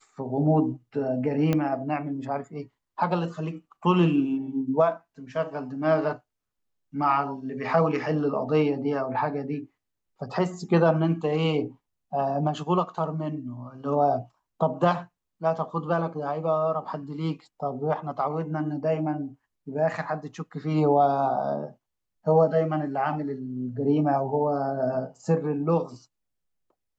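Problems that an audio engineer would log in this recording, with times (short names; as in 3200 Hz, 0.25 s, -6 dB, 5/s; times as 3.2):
1.53 pop -12 dBFS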